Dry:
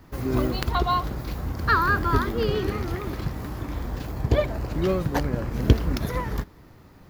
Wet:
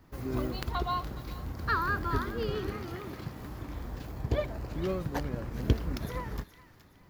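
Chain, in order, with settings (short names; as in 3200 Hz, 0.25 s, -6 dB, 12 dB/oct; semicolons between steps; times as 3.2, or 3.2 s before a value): 2.75–3.41 HPF 94 Hz; on a send: thin delay 0.419 s, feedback 35%, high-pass 1500 Hz, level -13 dB; on the sum: gain -8.5 dB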